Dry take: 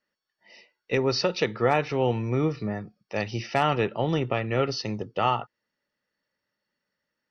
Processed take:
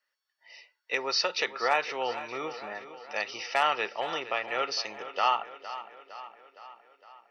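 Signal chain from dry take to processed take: high-pass 840 Hz 12 dB/octave; tape echo 461 ms, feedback 61%, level -12.5 dB, low-pass 5.6 kHz; trim +1.5 dB

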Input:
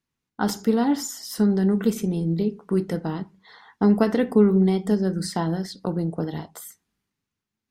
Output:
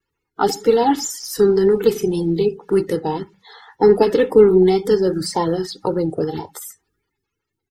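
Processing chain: coarse spectral quantiser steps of 30 dB; comb 2.3 ms, depth 59%; vibrato 1.9 Hz 43 cents; trim +5.5 dB

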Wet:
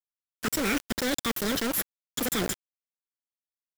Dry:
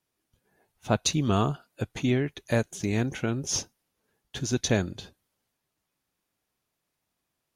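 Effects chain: in parallel at -3 dB: saturation -26 dBFS, distortion -8 dB; on the sum: peak limiter -16 dBFS, peak gain reduction 7.5 dB; treble shelf 4.2 kHz +2 dB; waveshaping leveller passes 2; comb 1.1 ms, depth 64%; reverse; compression 10:1, threshold -24 dBFS, peak gain reduction 9.5 dB; reverse; AM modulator 120 Hz, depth 35%; speed mistake 7.5 ips tape played at 15 ips; dynamic bell 2.3 kHz, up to +7 dB, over -49 dBFS, Q 0.7; bit crusher 5-bit

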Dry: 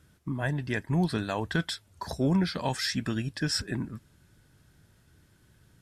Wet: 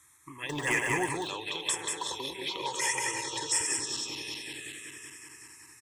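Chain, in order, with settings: backward echo that repeats 189 ms, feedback 76%, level -7.5 dB; static phaser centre 990 Hz, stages 8; compression 6:1, threshold -39 dBFS, peak gain reduction 12 dB; frequency weighting ITU-R 468; 0.49–1.09 s: waveshaping leveller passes 3; 1.61–2.08 s: treble shelf 4.1 kHz -> 7.4 kHz +6.5 dB; 2.58–3.67 s: comb 2.1 ms, depth 68%; delay 186 ms -3.5 dB; touch-sensitive phaser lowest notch 480 Hz, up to 3.9 kHz, full sweep at -33 dBFS; trim +8.5 dB

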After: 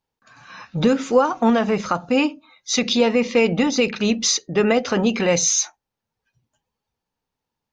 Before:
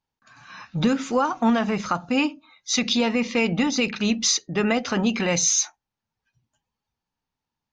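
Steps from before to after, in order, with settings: peaking EQ 480 Hz +7 dB 0.77 oct; trim +1.5 dB

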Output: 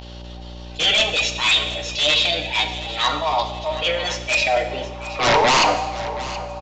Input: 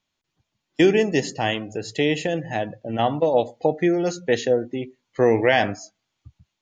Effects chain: median filter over 5 samples; bass shelf 370 Hz -5.5 dB; comb 6.5 ms, depth 72%; whistle 580 Hz -43 dBFS; formant shift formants +5 st; band-pass sweep 3.2 kHz -> 930 Hz, 4.15–5.20 s; mains buzz 60 Hz, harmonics 16, -56 dBFS -6 dB/octave; in parallel at -4 dB: sine folder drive 18 dB, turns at -9 dBFS; on the sum: transient shaper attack -7 dB, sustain +3 dB; on a send: feedback delay 724 ms, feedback 42%, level -15 dB; on the sum: Schroeder reverb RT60 1.1 s, combs from 30 ms, DRR 9 dB; resampled via 16 kHz

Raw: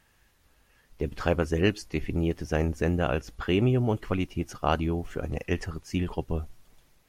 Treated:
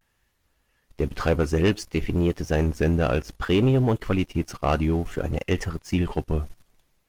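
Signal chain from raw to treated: vibrato 0.59 Hz 71 cents; waveshaping leveller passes 2; trim -2 dB

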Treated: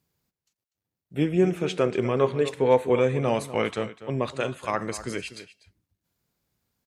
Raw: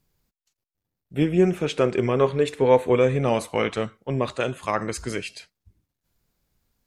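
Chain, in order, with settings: high-pass 79 Hz; echo from a far wall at 42 m, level -14 dB; trim -2.5 dB

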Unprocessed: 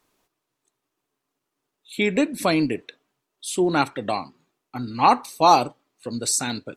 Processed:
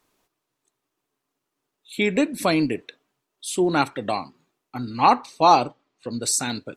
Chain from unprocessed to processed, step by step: 5.10–6.22 s: low-pass 5.3 kHz 12 dB/octave

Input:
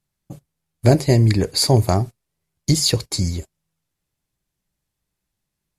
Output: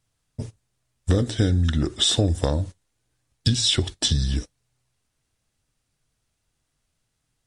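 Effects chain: wide varispeed 0.775×; compression 6:1, threshold -22 dBFS, peak gain reduction 13.5 dB; trim +4.5 dB

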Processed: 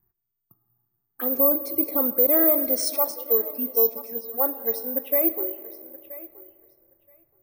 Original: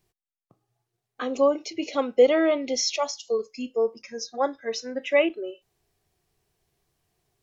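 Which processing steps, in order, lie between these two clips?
level-controlled noise filter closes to 1.3 kHz, open at -16.5 dBFS; 1.40–2.38 s: bass shelf 220 Hz +7 dB; peak limiter -16.5 dBFS, peak gain reduction 10 dB; touch-sensitive phaser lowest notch 550 Hz, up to 2.9 kHz, full sweep at -27.5 dBFS; thinning echo 975 ms, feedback 16%, high-pass 450 Hz, level -16 dB; on a send at -14 dB: reverberation RT60 2.6 s, pre-delay 40 ms; on the sum: careless resampling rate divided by 3×, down none, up zero stuff

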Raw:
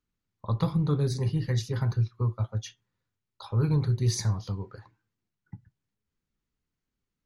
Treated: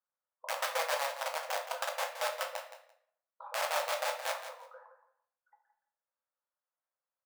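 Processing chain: low-pass 1.5 kHz 24 dB/octave; in parallel at 0 dB: compression 6:1, threshold -35 dBFS, peak gain reduction 14 dB; on the sum: integer overflow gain 18.5 dB; brick-wall FIR high-pass 490 Hz; on a send: feedback delay 170 ms, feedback 17%, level -11 dB; on the sum: simulated room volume 93 m³, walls mixed, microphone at 0.64 m; trim -8 dB

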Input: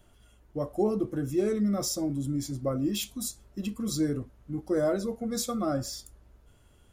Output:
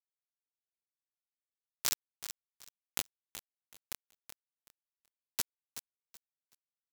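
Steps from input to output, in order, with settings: high-pass 1.1 kHz 12 dB/octave; peaking EQ 10 kHz -14.5 dB 0.32 oct; in parallel at -0.5 dB: compression 6:1, threshold -49 dBFS, peak gain reduction 17.5 dB; on the sum: bit crusher 4-bit; feedback delay 377 ms, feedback 24%, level -11 dB; trim +6 dB

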